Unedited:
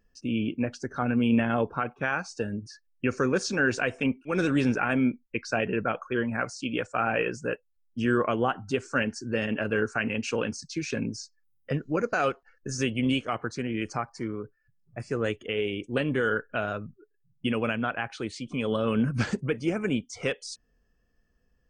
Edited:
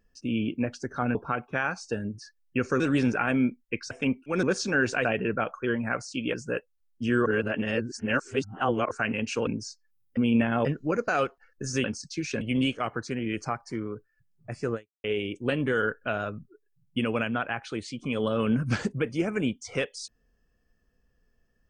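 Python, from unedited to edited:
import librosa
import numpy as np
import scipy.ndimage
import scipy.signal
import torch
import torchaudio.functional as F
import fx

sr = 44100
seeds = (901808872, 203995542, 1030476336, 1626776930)

y = fx.edit(x, sr, fx.move(start_s=1.15, length_s=0.48, to_s=11.7),
    fx.swap(start_s=3.28, length_s=0.62, other_s=4.42, other_length_s=1.11),
    fx.cut(start_s=6.82, length_s=0.48),
    fx.reverse_span(start_s=8.22, length_s=1.65),
    fx.move(start_s=10.43, length_s=0.57, to_s=12.89),
    fx.fade_out_span(start_s=15.22, length_s=0.3, curve='exp'), tone=tone)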